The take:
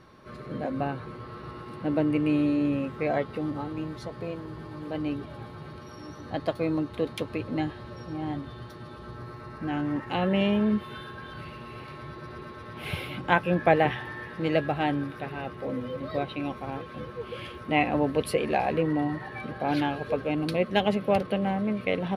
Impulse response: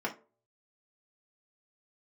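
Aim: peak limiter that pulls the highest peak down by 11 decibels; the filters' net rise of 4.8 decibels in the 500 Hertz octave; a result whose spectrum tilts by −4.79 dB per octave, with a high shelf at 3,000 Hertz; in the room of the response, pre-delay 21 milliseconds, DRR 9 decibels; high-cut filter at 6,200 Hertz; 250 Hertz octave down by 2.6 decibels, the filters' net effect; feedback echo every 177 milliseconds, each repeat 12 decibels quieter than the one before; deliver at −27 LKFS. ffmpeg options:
-filter_complex "[0:a]lowpass=6200,equalizer=frequency=250:width_type=o:gain=-6,equalizer=frequency=500:width_type=o:gain=7,highshelf=frequency=3000:gain=4.5,alimiter=limit=-13.5dB:level=0:latency=1,aecho=1:1:177|354|531:0.251|0.0628|0.0157,asplit=2[link_01][link_02];[1:a]atrim=start_sample=2205,adelay=21[link_03];[link_02][link_03]afir=irnorm=-1:irlink=0,volume=-15dB[link_04];[link_01][link_04]amix=inputs=2:normalize=0,volume=0.5dB"

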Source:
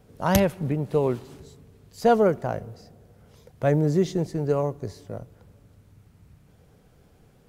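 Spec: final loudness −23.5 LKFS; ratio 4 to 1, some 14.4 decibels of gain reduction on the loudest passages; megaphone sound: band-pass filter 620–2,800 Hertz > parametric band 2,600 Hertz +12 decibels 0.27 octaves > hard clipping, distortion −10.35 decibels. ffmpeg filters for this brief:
ffmpeg -i in.wav -af "acompressor=threshold=-32dB:ratio=4,highpass=620,lowpass=2800,equalizer=frequency=2600:width_type=o:width=0.27:gain=12,asoftclip=type=hard:threshold=-35.5dB,volume=21dB" out.wav

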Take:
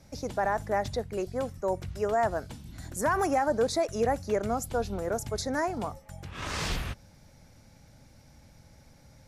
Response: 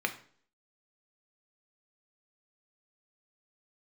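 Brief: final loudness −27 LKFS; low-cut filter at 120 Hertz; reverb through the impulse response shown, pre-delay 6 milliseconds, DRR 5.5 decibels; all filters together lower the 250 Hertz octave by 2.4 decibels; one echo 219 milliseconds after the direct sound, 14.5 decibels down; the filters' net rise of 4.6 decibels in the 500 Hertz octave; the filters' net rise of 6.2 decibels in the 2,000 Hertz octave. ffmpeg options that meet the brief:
-filter_complex "[0:a]highpass=120,equalizer=frequency=250:width_type=o:gain=-5.5,equalizer=frequency=500:width_type=o:gain=6.5,equalizer=frequency=2000:width_type=o:gain=7.5,aecho=1:1:219:0.188,asplit=2[link_01][link_02];[1:a]atrim=start_sample=2205,adelay=6[link_03];[link_02][link_03]afir=irnorm=-1:irlink=0,volume=-12.5dB[link_04];[link_01][link_04]amix=inputs=2:normalize=0,volume=-1dB"

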